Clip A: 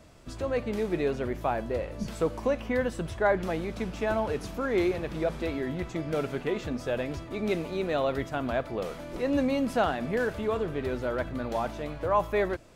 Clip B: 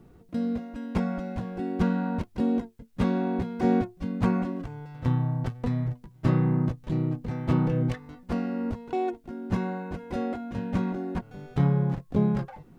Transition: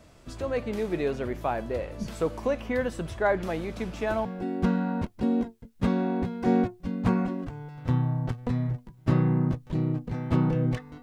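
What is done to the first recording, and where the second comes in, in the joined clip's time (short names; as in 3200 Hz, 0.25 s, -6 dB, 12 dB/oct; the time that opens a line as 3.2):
clip A
4.25 switch to clip B from 1.42 s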